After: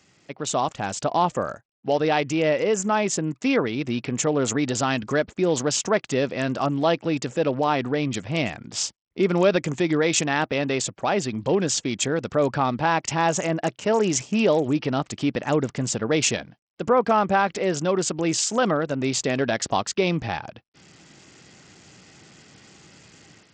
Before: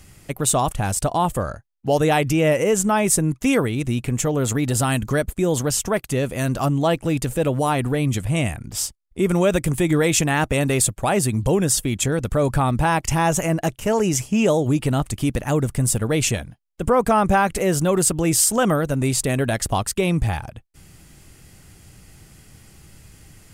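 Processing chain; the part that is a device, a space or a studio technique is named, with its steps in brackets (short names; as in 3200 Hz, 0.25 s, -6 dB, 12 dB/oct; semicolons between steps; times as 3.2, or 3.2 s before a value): Bluetooth headset (HPF 210 Hz 12 dB/oct; AGC gain up to 9.5 dB; downsampling 16000 Hz; gain -6.5 dB; SBC 64 kbps 44100 Hz)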